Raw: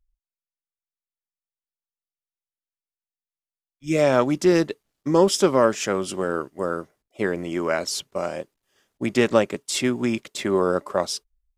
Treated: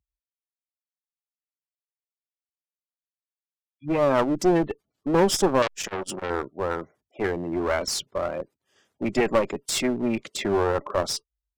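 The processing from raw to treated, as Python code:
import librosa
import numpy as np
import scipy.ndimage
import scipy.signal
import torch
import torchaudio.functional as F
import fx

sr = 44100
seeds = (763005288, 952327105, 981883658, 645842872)

y = fx.spec_gate(x, sr, threshold_db=-20, keep='strong')
y = scipy.signal.sosfilt(scipy.signal.butter(4, 66.0, 'highpass', fs=sr, output='sos'), y)
y = fx.clip_asym(y, sr, top_db=-27.5, bottom_db=-10.0)
y = fx.transformer_sat(y, sr, knee_hz=2200.0, at=(5.62, 6.3))
y = y * librosa.db_to_amplitude(1.5)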